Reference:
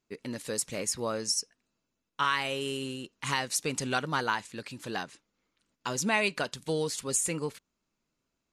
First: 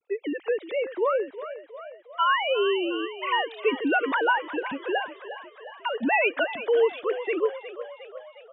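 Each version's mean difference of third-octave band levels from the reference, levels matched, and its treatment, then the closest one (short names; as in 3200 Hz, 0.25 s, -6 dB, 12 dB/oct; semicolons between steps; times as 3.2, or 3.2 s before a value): 17.5 dB: sine-wave speech; in parallel at -2 dB: compressor, threshold -37 dBFS, peak gain reduction 14 dB; on the sum: frequency-shifting echo 0.359 s, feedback 60%, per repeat +39 Hz, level -13 dB; gain +4 dB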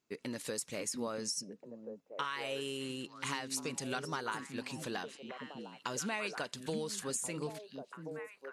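4.5 dB: HPF 140 Hz 6 dB/oct; compressor 4:1, threshold -36 dBFS, peak gain reduction 12 dB; on a send: delay with a stepping band-pass 0.69 s, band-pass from 210 Hz, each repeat 1.4 oct, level -2 dB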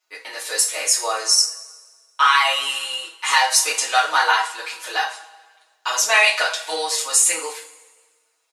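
11.5 dB: HPF 650 Hz 24 dB/oct; comb 6.3 ms, depth 81%; two-slope reverb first 0.34 s, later 1.5 s, from -19 dB, DRR -5 dB; gain +6 dB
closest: second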